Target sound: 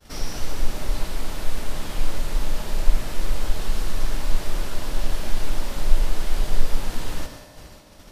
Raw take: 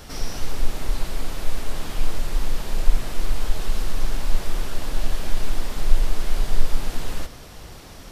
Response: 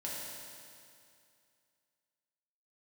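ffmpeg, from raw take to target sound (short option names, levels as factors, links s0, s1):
-filter_complex "[0:a]agate=range=0.0224:threshold=0.02:ratio=3:detection=peak,asplit=2[s0][s1];[1:a]atrim=start_sample=2205[s2];[s1][s2]afir=irnorm=-1:irlink=0,volume=0.422[s3];[s0][s3]amix=inputs=2:normalize=0,volume=0.794"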